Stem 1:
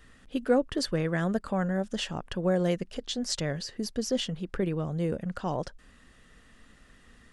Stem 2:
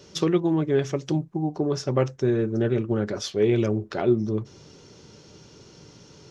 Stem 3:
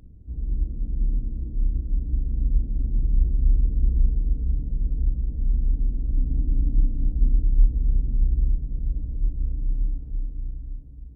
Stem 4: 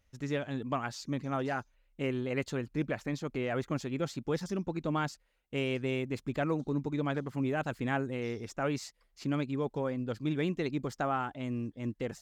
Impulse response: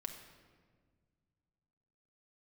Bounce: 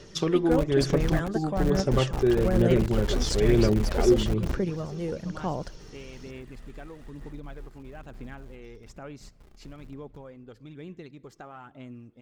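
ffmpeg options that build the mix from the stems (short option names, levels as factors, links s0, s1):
-filter_complex "[0:a]volume=0.794[s0];[1:a]volume=0.631,asplit=3[s1][s2][s3];[s2]volume=0.398[s4];[2:a]lowshelf=f=320:g=-10,acrusher=bits=4:mix=0:aa=0.000001,volume=0.75,asplit=2[s5][s6];[s6]volume=0.1[s7];[3:a]acompressor=threshold=0.00891:ratio=2.5,adelay=400,volume=0.531,asplit=2[s8][s9];[s9]volume=0.282[s10];[s3]apad=whole_len=492117[s11];[s5][s11]sidechaingate=range=0.0224:threshold=0.00631:ratio=16:detection=peak[s12];[4:a]atrim=start_sample=2205[s13];[s4][s7][s10]amix=inputs=3:normalize=0[s14];[s14][s13]afir=irnorm=-1:irlink=0[s15];[s0][s1][s12][s8][s15]amix=inputs=5:normalize=0,aphaser=in_gain=1:out_gain=1:delay=2.6:decay=0.33:speed=1.1:type=sinusoidal"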